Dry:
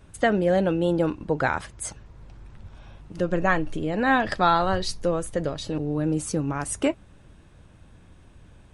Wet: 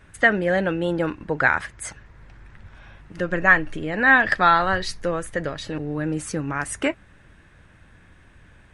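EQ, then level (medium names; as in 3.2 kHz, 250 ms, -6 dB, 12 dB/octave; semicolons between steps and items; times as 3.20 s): peaking EQ 1.8 kHz +13 dB 0.97 oct; -1.5 dB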